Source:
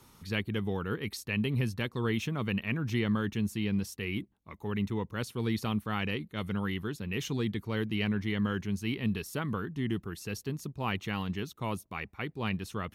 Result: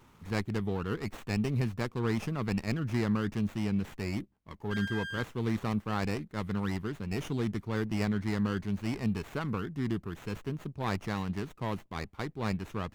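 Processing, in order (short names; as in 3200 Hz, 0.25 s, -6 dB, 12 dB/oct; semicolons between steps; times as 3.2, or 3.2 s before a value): 4.7–5.22 whine 1600 Hz -34 dBFS; running maximum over 9 samples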